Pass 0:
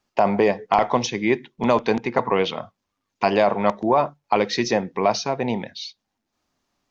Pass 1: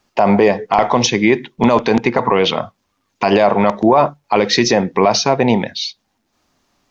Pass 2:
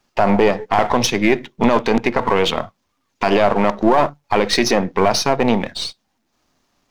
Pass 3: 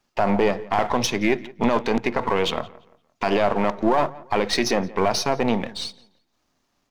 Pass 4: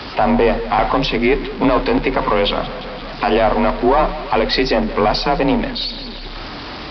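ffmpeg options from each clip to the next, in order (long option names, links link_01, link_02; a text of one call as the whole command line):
ffmpeg -i in.wav -af "alimiter=level_in=12dB:limit=-1dB:release=50:level=0:latency=1,volume=-1dB" out.wav
ffmpeg -i in.wav -af "aeval=exprs='if(lt(val(0),0),0.447*val(0),val(0))':channel_layout=same" out.wav
ffmpeg -i in.wav -filter_complex "[0:a]asplit=2[link_01][link_02];[link_02]adelay=172,lowpass=frequency=3000:poles=1,volume=-20.5dB,asplit=2[link_03][link_04];[link_04]adelay=172,lowpass=frequency=3000:poles=1,volume=0.34,asplit=2[link_05][link_06];[link_06]adelay=172,lowpass=frequency=3000:poles=1,volume=0.34[link_07];[link_01][link_03][link_05][link_07]amix=inputs=4:normalize=0,volume=-5.5dB" out.wav
ffmpeg -i in.wav -af "aeval=exprs='val(0)+0.5*0.0447*sgn(val(0))':channel_layout=same,afreqshift=33,aresample=11025,aresample=44100,volume=4.5dB" out.wav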